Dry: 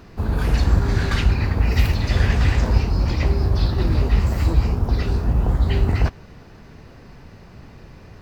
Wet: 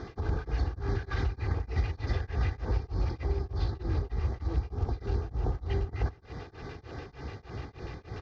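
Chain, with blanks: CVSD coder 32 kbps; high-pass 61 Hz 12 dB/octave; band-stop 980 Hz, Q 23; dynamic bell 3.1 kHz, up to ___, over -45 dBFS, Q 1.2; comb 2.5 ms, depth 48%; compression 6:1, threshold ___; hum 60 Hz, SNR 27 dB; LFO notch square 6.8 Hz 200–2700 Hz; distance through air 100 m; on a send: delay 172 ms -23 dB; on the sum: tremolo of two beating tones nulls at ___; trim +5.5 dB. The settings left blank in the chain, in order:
-4 dB, -31 dBFS, 3.3 Hz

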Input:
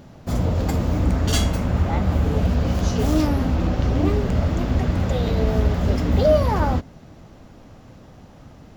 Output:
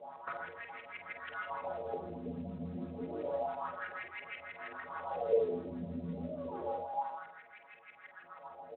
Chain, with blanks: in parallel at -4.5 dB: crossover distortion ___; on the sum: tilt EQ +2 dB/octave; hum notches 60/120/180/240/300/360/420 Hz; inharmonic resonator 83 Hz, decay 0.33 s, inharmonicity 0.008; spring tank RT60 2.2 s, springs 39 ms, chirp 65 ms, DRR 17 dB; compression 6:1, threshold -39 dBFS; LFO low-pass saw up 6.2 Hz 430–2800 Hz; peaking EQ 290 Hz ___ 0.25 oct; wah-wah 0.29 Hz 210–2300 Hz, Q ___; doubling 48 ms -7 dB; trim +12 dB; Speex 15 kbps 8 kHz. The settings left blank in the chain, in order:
-49.5 dBFS, -9.5 dB, 3.7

